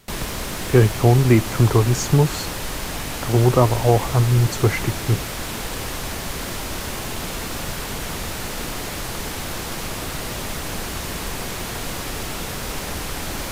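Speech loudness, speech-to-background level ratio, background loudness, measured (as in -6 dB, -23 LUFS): -18.5 LUFS, 9.5 dB, -28.0 LUFS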